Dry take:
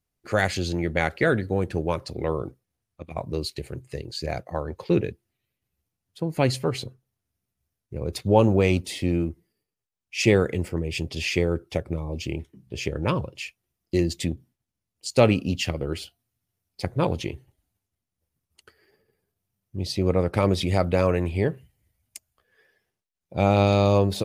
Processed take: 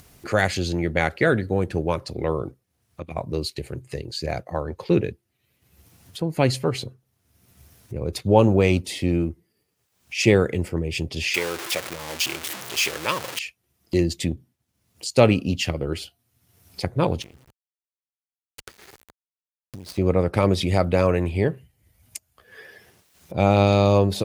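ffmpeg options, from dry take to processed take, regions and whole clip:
-filter_complex "[0:a]asettb=1/sr,asplit=3[s0][s1][s2];[s0]atrim=end=11.344[s3];[s1]atrim=start=11.34:end=13.39,asetpts=PTS-STARTPTS,afade=t=in:d=0.004:c=qsin,afade=t=out:st=2.046:d=0.004:c=qsin,aeval=exprs='val(0)+0.5*0.0473*sgn(val(0))':c=same,highpass=f=590:p=1,tiltshelf=f=900:g=-5.5[s4];[s2]atrim=start=13.386[s5];[s3][s4]acrossfade=d=0.004:c1=hsin:c2=qsin[s6];[s6][s5]acrossfade=d=0.004:c1=qsin:c2=hsin,asettb=1/sr,asplit=3[s7][s8][s9];[s7]atrim=end=17.224[s10];[s8]atrim=start=17.22:end=19.98,asetpts=PTS-STARTPTS,afade=t=in:d=0.004:c=qsin,afade=t=out:st=2.756:d=0.004:c=qsin,acompressor=threshold=0.00891:ratio=8:attack=3.2:release=140:knee=1:detection=peak,acrusher=bits=7:dc=4:mix=0:aa=0.000001[s11];[s9]atrim=start=19.976[s12];[s10][s11]acrossfade=d=0.004:c1=hsin:c2=qsin[s13];[s13][s12]acrossfade=d=0.004:c1=qsin:c2=hsin,highpass=45,acompressor=mode=upward:threshold=0.0282:ratio=2.5,volume=1.26"

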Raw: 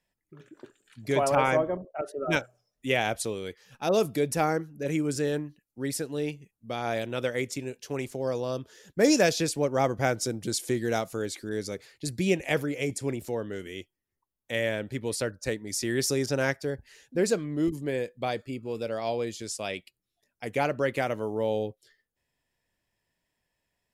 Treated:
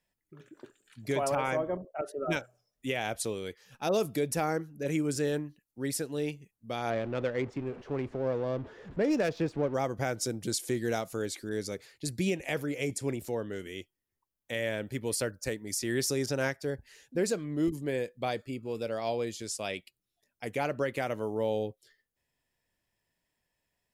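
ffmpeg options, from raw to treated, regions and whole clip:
-filter_complex "[0:a]asettb=1/sr,asplit=3[s0][s1][s2];[s0]atrim=end=6.904[s3];[s1]atrim=start=6.9:end=9.74,asetpts=PTS-STARTPTS,afade=t=in:d=0.004:c=qsin,afade=t=out:st=2.836:d=0.004:c=qsin,aeval=exprs='val(0)+0.5*0.0141*sgn(val(0))':c=same,adynamicsmooth=sensitivity=1:basefreq=1300[s4];[s2]atrim=start=9.736[s5];[s3][s4]acrossfade=d=0.004:c1=hsin:c2=qsin[s6];[s6][s5]acrossfade=d=0.004:c1=qsin:c2=hsin,asettb=1/sr,asplit=3[s7][s8][s9];[s7]atrim=end=14.814[s10];[s8]atrim=start=14.81:end=15.79,asetpts=PTS-STARTPTS,afade=t=in:d=0.004:c=qsin,afade=t=out:st=0.976:d=0.004:c=qsin,highshelf=f=11000:g=7,bandreject=f=3800:w=15[s11];[s9]atrim=start=15.786[s12];[s10][s11]acrossfade=d=0.004:c1=hsin:c2=qsin[s13];[s13][s12]acrossfade=d=0.004:c1=qsin:c2=hsin,highshelf=f=11000:g=4,alimiter=limit=0.133:level=0:latency=1:release=183,volume=0.794"

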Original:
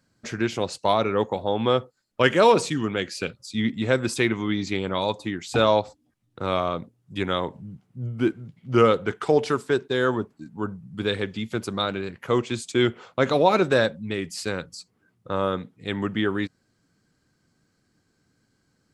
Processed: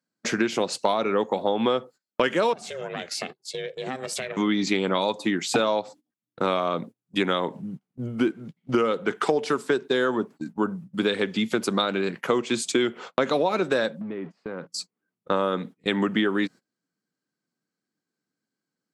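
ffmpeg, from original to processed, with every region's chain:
-filter_complex "[0:a]asettb=1/sr,asplit=3[s0][s1][s2];[s0]atrim=end=2.534[s3];[s1]atrim=start=2.53:end=4.37,asetpts=PTS-STARTPTS,afade=t=in:d=0.004:c=qsin,afade=t=out:st=1.836:d=0.004:c=qsin,aeval=exprs='val(0)*sin(2*PI*260*n/s)':c=same,acompressor=threshold=0.0224:ratio=10:attack=3.2:release=140:knee=1:detection=peak[s4];[s2]atrim=start=4.366[s5];[s3][s4]acrossfade=d=0.004:c1=hsin:c2=qsin[s6];[s6][s5]acrossfade=d=0.004:c1=qsin:c2=hsin,asettb=1/sr,asplit=3[s7][s8][s9];[s7]atrim=end=14.014[s10];[s8]atrim=start=14.01:end=14.67,asetpts=PTS-STARTPTS,afade=t=in:d=0.004:c=qsin,afade=t=out:st=0.656:d=0.004:c=qsin,aeval=exprs='val(0)+0.5*0.0112*sgn(val(0))':c=same,lowpass=1300,acompressor=threshold=0.0178:ratio=20:attack=3.2:release=140:knee=1:detection=peak[s11];[s9]atrim=start=14.666[s12];[s10][s11]acrossfade=d=0.004:c1=hsin:c2=qsin[s13];[s13][s12]acrossfade=d=0.004:c1=qsin:c2=hsin,highpass=f=170:w=0.5412,highpass=f=170:w=1.3066,agate=range=0.0631:threshold=0.00708:ratio=16:detection=peak,acompressor=threshold=0.0447:ratio=10,volume=2.51"

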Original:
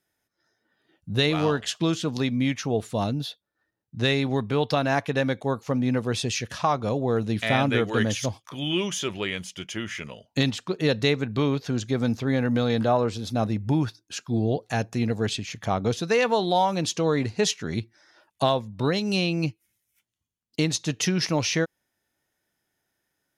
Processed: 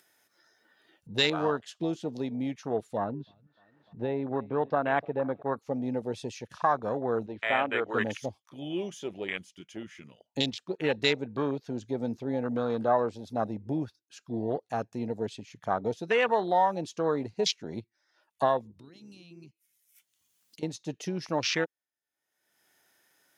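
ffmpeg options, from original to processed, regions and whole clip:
-filter_complex "[0:a]asettb=1/sr,asplit=3[s0][s1][s2];[s0]atrim=end=2.974[s3];[s1]atrim=start=2.97:end=5.57,asetpts=PTS-STARTPTS,afade=t=in:d=0.004:c=qsin,afade=t=out:st=2.596:d=0.004:c=qsin,lowpass=1900,acompressor=mode=upward:threshold=0.00794:ratio=2.5:attack=3.2:release=140:knee=2.83:detection=peak,aecho=1:1:300|600|900:0.112|0.0438|0.0171,atrim=end_sample=114660[s4];[s2]atrim=start=5.566[s5];[s3][s4]acrossfade=d=0.004:c1=hsin:c2=qsin[s6];[s6][s5]acrossfade=d=0.004:c1=qsin:c2=hsin,asettb=1/sr,asplit=3[s7][s8][s9];[s7]atrim=end=7.264[s10];[s8]atrim=start=7.26:end=7.9,asetpts=PTS-STARTPTS,afade=t=in:d=0.004:c=qsin,afade=t=out:st=0.636:d=0.004:c=qsin,lowpass=3000,equalizer=f=160:t=o:w=1.1:g=-15[s11];[s9]atrim=start=7.896[s12];[s10][s11]acrossfade=d=0.004:c1=hsin:c2=qsin[s13];[s13][s12]acrossfade=d=0.004:c1=qsin:c2=hsin,asettb=1/sr,asplit=3[s14][s15][s16];[s14]atrim=end=18.714[s17];[s15]atrim=start=18.71:end=20.63,asetpts=PTS-STARTPTS,afade=t=in:d=0.004:c=qsin,afade=t=out:st=1.916:d=0.004:c=qsin,highshelf=f=2900:g=8.5,acompressor=threshold=0.01:ratio=4:attack=3.2:release=140:knee=1:detection=peak[s18];[s16]atrim=start=20.626[s19];[s17][s18]acrossfade=d=0.004:c1=hsin:c2=qsin[s20];[s20][s19]acrossfade=d=0.004:c1=qsin:c2=hsin,afwtdn=0.0355,highpass=f=540:p=1,acompressor=mode=upward:threshold=0.00501:ratio=2.5"

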